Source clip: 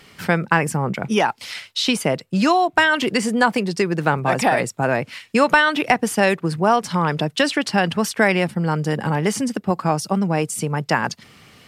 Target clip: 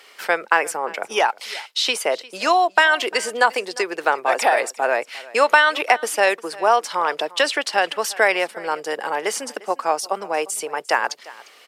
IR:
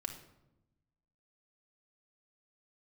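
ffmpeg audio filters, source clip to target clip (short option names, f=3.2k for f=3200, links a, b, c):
-af "highpass=f=430:w=0.5412,highpass=f=430:w=1.3066,aecho=1:1:351:0.0944,volume=1dB"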